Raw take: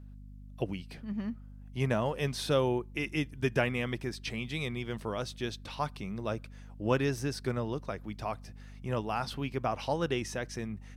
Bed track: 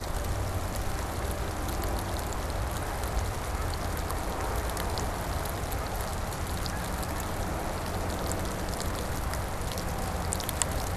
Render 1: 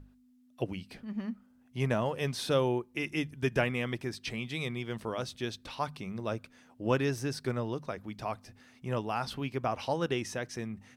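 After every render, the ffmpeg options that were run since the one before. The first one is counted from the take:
-af "bandreject=f=50:t=h:w=6,bandreject=f=100:t=h:w=6,bandreject=f=150:t=h:w=6,bandreject=f=200:t=h:w=6"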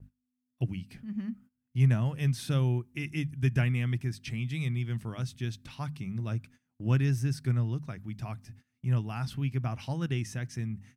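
-af "equalizer=f=125:t=o:w=1:g=11,equalizer=f=500:t=o:w=1:g=-12,equalizer=f=1k:t=o:w=1:g=-7,equalizer=f=4k:t=o:w=1:g=-6,agate=range=-20dB:threshold=-51dB:ratio=16:detection=peak"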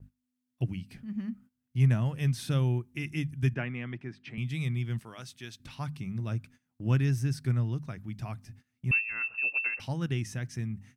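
-filter_complex "[0:a]asettb=1/sr,asplit=3[a][b][c];[a]atrim=end=3.544[d];[b]atrim=start=3.54:end=4.38,asetpts=PTS-STARTPTS,afade=t=in:d=0.004:c=qsin,afade=t=out:st=0.836:d=0.004:c=qsin,highpass=230,lowpass=2.4k[e];[c]atrim=start=4.376[f];[d][e]acrossfade=d=0.004:c1=hsin:c2=qsin[g];[g][f]acrossfade=d=0.004:c1=qsin:c2=hsin,asettb=1/sr,asplit=3[h][i][j];[h]atrim=end=4.994[k];[i]atrim=start=4.99:end=5.6,asetpts=PTS-STARTPTS,afade=t=in:d=0.004:c=qsin,afade=t=out:st=0.606:d=0.004:c=qsin,highpass=f=660:p=1[l];[j]atrim=start=5.596[m];[k][l]acrossfade=d=0.004:c1=hsin:c2=qsin[n];[n][m]acrossfade=d=0.004:c1=qsin:c2=hsin,asettb=1/sr,asplit=3[o][p][q];[o]atrim=end=8.914[r];[p]atrim=start=8.91:end=9.8,asetpts=PTS-STARTPTS,afade=t=in:d=0.004:c=qsin,afade=t=out:st=0.886:d=0.004:c=qsin,lowpass=f=2.4k:t=q:w=0.5098,lowpass=f=2.4k:t=q:w=0.6013,lowpass=f=2.4k:t=q:w=0.9,lowpass=f=2.4k:t=q:w=2.563,afreqshift=-2800[s];[q]atrim=start=9.796[t];[r][s]acrossfade=d=0.004:c1=hsin:c2=qsin[u];[u][t]acrossfade=d=0.004:c1=qsin:c2=hsin"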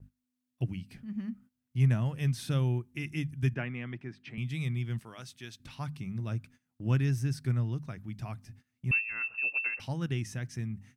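-af "volume=-1.5dB"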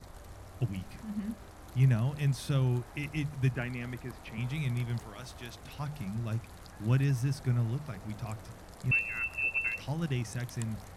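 -filter_complex "[1:a]volume=-17.5dB[a];[0:a][a]amix=inputs=2:normalize=0"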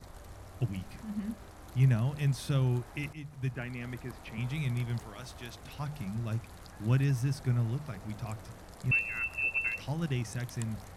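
-filter_complex "[0:a]asplit=2[a][b];[a]atrim=end=3.13,asetpts=PTS-STARTPTS,afade=t=out:st=3.126:d=0.004:c=hsin:silence=0.237137[c];[b]atrim=start=3.13,asetpts=PTS-STARTPTS,afade=t=in:d=0.86:silence=0.237137[d];[c][d]concat=n=2:v=0:a=1"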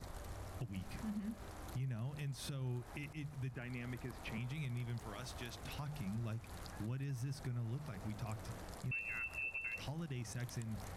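-af "acompressor=threshold=-35dB:ratio=6,alimiter=level_in=10.5dB:limit=-24dB:level=0:latency=1:release=217,volume=-10.5dB"

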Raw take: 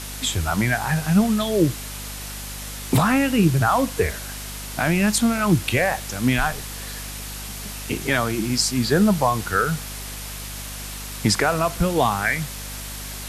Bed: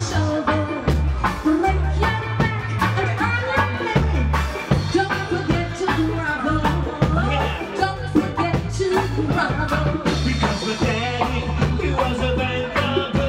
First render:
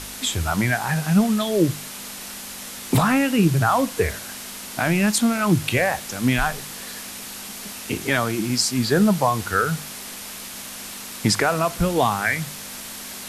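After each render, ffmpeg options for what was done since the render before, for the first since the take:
-af "bandreject=f=50:t=h:w=4,bandreject=f=100:t=h:w=4,bandreject=f=150:t=h:w=4"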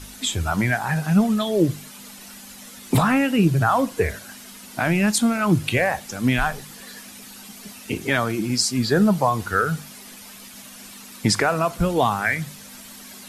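-af "afftdn=nr=10:nf=-36"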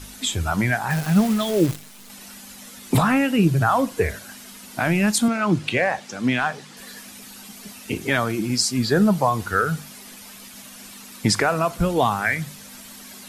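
-filter_complex "[0:a]asettb=1/sr,asplit=3[a][b][c];[a]atrim=end=0.904[d];[b]atrim=start=0.9:end=2.1,asetpts=PTS-STARTPTS,afade=t=in:d=0.004:c=qsin,afade=t=out:st=1.196:d=0.004:c=qsin,acrusher=bits=6:dc=4:mix=0:aa=0.000001[e];[c]atrim=start=2.096[f];[d][e]acrossfade=d=0.004:c1=hsin:c2=qsin[g];[g][f]acrossfade=d=0.004:c1=qsin:c2=hsin,asettb=1/sr,asplit=3[h][i][j];[h]atrim=end=5.284[k];[i]atrim=start=5.28:end=6.77,asetpts=PTS-STARTPTS,afade=t=in:d=0.004:c=qsin,afade=t=out:st=1.486:d=0.004:c=qsin,highpass=160,lowpass=6.3k[l];[j]atrim=start=6.766[m];[k][l]acrossfade=d=0.004:c1=hsin:c2=qsin[n];[n][m]acrossfade=d=0.004:c1=qsin:c2=hsin"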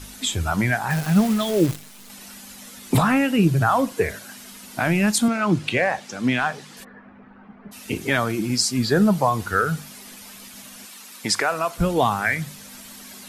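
-filter_complex "[0:a]asettb=1/sr,asplit=3[a][b][c];[a]atrim=end=3.934[d];[b]atrim=start=3.93:end=4.38,asetpts=PTS-STARTPTS,afade=t=in:d=0.004:c=qsin,afade=t=out:st=0.446:d=0.004:c=qsin,highpass=110[e];[c]atrim=start=4.376[f];[d][e]acrossfade=d=0.004:c1=hsin:c2=qsin[g];[g][f]acrossfade=d=0.004:c1=qsin:c2=hsin,asplit=3[h][i][j];[h]afade=t=out:st=6.83:d=0.02[k];[i]lowpass=f=1.6k:w=0.5412,lowpass=f=1.6k:w=1.3066,afade=t=in:st=6.83:d=0.02,afade=t=out:st=7.71:d=0.02[l];[j]afade=t=in:st=7.71:d=0.02[m];[k][l][m]amix=inputs=3:normalize=0,asettb=1/sr,asplit=3[n][o][p];[n]atrim=end=10.854[q];[o]atrim=start=10.85:end=11.78,asetpts=PTS-STARTPTS,afade=t=in:d=0.004:c=qsin,afade=t=out:st=0.926:d=0.004:c=qsin,highpass=f=580:p=1[r];[p]atrim=start=11.776[s];[q][r]acrossfade=d=0.004:c1=hsin:c2=qsin[t];[t][s]acrossfade=d=0.004:c1=qsin:c2=hsin"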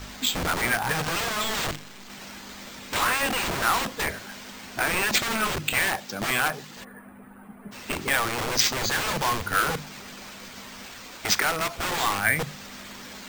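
-filter_complex "[0:a]acrossover=split=930[a][b];[a]aeval=exprs='(mod(15*val(0)+1,2)-1)/15':c=same[c];[c][b]amix=inputs=2:normalize=0,acrusher=samples=4:mix=1:aa=0.000001"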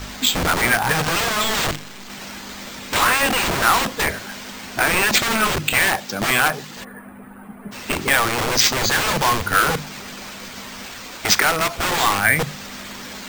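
-af "volume=7dB,alimiter=limit=-3dB:level=0:latency=1"

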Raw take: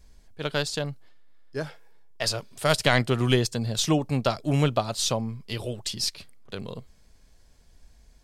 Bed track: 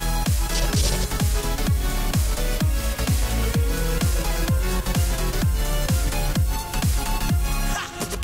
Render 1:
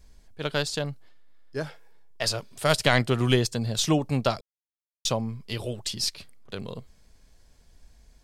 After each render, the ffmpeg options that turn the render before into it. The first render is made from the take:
-filter_complex "[0:a]asplit=3[a][b][c];[a]atrim=end=4.41,asetpts=PTS-STARTPTS,afade=t=out:st=4.406:d=0.004:c=hsin[d];[b]atrim=start=4.41:end=5.05,asetpts=PTS-STARTPTS,volume=0[e];[c]atrim=start=5.05,asetpts=PTS-STARTPTS,afade=t=in:d=0.004:c=hsin[f];[d][e][f]concat=n=3:v=0:a=1"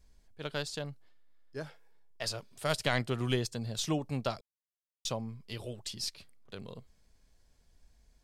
-af "volume=-9dB"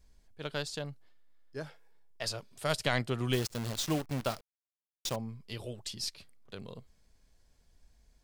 -filter_complex "[0:a]asettb=1/sr,asplit=3[a][b][c];[a]atrim=end=3.334[d];[b]atrim=start=3.33:end=5.16,asetpts=PTS-STARTPTS,afade=t=in:d=0.004:c=qsin,afade=t=out:st=1.826:d=0.004:c=qsin,acrusher=bits=7:dc=4:mix=0:aa=0.000001[e];[c]atrim=start=5.156[f];[d][e]acrossfade=d=0.004:c1=hsin:c2=qsin[g];[g][f]acrossfade=d=0.004:c1=qsin:c2=hsin"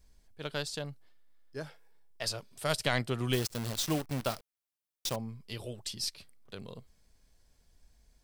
-af "highshelf=f=6.2k:g=4.5,bandreject=f=6.8k:w=21"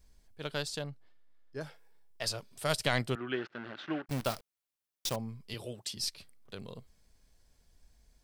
-filter_complex "[0:a]asettb=1/sr,asplit=3[a][b][c];[a]atrim=end=0.844[d];[b]atrim=start=0.84:end=1.61,asetpts=PTS-STARTPTS,afade=t=in:d=0.004:c=qsin,afade=t=out:st=0.766:d=0.004:c=qsin,lowpass=f=3.4k:p=1[e];[c]atrim=start=1.606[f];[d][e]acrossfade=d=0.004:c1=hsin:c2=qsin[g];[g][f]acrossfade=d=0.004:c1=qsin:c2=hsin,asettb=1/sr,asplit=3[h][i][j];[h]atrim=end=3.154[k];[i]atrim=start=3.15:end=4.09,asetpts=PTS-STARTPTS,afade=t=in:d=0.004:c=qsin,afade=t=out:st=0.936:d=0.004:c=qsin,highpass=320,equalizer=f=340:t=q:w=4:g=3,equalizer=f=480:t=q:w=4:g=-8,equalizer=f=700:t=q:w=4:g=-4,equalizer=f=1k:t=q:w=4:g=-6,equalizer=f=1.5k:t=q:w=4:g=8,equalizer=f=2.3k:t=q:w=4:g=-4,lowpass=f=2.6k:w=0.5412,lowpass=f=2.6k:w=1.3066[l];[j]atrim=start=4.086[m];[k][l]acrossfade=d=0.004:c1=hsin:c2=qsin[n];[n][m]acrossfade=d=0.004:c1=qsin:c2=hsin,asettb=1/sr,asplit=3[o][p][q];[o]atrim=end=5.544[r];[p]atrim=start=5.54:end=5.97,asetpts=PTS-STARTPTS,afade=t=in:d=0.004:c=qsin,afade=t=out:st=0.426:d=0.004:c=qsin,highpass=110[s];[q]atrim=start=5.966[t];[r][s]acrossfade=d=0.004:c1=hsin:c2=qsin[u];[u][t]acrossfade=d=0.004:c1=qsin:c2=hsin"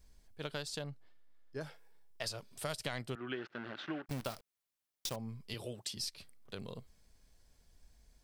-af "acompressor=threshold=-37dB:ratio=4"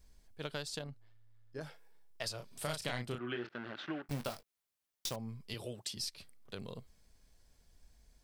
-filter_complex "[0:a]asettb=1/sr,asplit=3[a][b][c];[a]atrim=end=0.794[d];[b]atrim=start=0.79:end=1.63,asetpts=PTS-STARTPTS,afade=t=in:d=0.004:c=qsin,afade=t=out:st=0.836:d=0.004:c=qsin,tremolo=f=110:d=0.462[e];[c]atrim=start=1.626[f];[d][e]acrossfade=d=0.004:c1=hsin:c2=qsin[g];[g][f]acrossfade=d=0.004:c1=qsin:c2=hsin,asettb=1/sr,asplit=3[h][i][j];[h]atrim=end=2.364[k];[i]atrim=start=2.36:end=3.49,asetpts=PTS-STARTPTS,afade=t=in:d=0.004:c=qsin,afade=t=out:st=1.126:d=0.004:c=qsin,asplit=2[l][m];[m]adelay=33,volume=-5.5dB[n];[l][n]amix=inputs=2:normalize=0,atrim=end_sample=49833[o];[j]atrim=start=3.486[p];[k][o]acrossfade=d=0.004:c1=hsin:c2=qsin[q];[q][p]acrossfade=d=0.004:c1=qsin:c2=hsin,asettb=1/sr,asplit=3[r][s][t];[r]atrim=end=4.034[u];[s]atrim=start=4.03:end=5.11,asetpts=PTS-STARTPTS,afade=t=in:d=0.004:c=qsin,afade=t=out:st=1.076:d=0.004:c=qsin,asplit=2[v][w];[w]adelay=21,volume=-9dB[x];[v][x]amix=inputs=2:normalize=0,atrim=end_sample=47628[y];[t]atrim=start=5.106[z];[u][y]acrossfade=d=0.004:c1=hsin:c2=qsin[aa];[aa][z]acrossfade=d=0.004:c1=qsin:c2=hsin"

